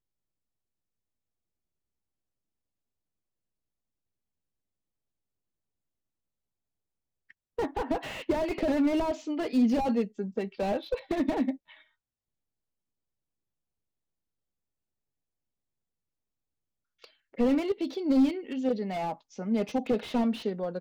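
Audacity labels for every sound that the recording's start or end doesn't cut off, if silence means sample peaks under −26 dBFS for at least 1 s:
7.590000	11.510000	sound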